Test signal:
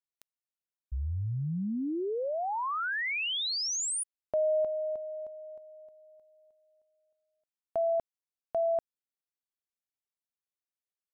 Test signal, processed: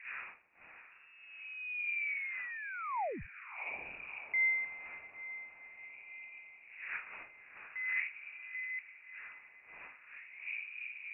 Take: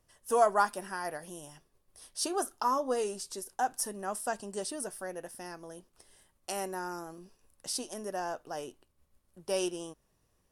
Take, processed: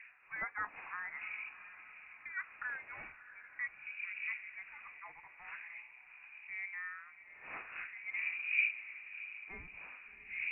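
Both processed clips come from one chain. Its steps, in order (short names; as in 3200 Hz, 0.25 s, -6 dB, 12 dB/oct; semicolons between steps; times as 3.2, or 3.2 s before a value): wind noise 220 Hz -30 dBFS; hard clip -17 dBFS; wah 0.44 Hz 320–2100 Hz, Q 2.4; on a send: diffused feedback echo 0.682 s, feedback 52%, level -13.5 dB; on the sum: inverted band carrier 2700 Hz; gain -2 dB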